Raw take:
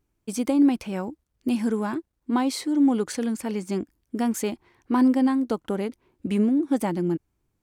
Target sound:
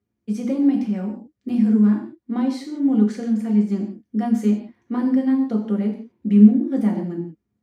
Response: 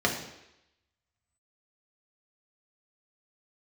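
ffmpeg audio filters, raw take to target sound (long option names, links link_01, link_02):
-filter_complex "[0:a]equalizer=frequency=210:width=5.4:gain=11[link_01];[1:a]atrim=start_sample=2205,afade=type=out:start_time=0.23:duration=0.01,atrim=end_sample=10584[link_02];[link_01][link_02]afir=irnorm=-1:irlink=0,volume=-16.5dB"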